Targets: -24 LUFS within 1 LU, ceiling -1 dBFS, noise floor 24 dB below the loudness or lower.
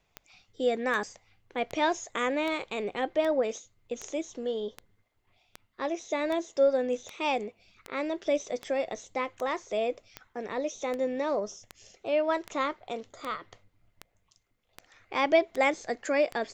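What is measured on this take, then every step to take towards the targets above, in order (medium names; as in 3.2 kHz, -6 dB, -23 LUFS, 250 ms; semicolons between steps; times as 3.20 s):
clicks found 22; loudness -30.5 LUFS; peak level -11.0 dBFS; loudness target -24.0 LUFS
-> de-click; trim +6.5 dB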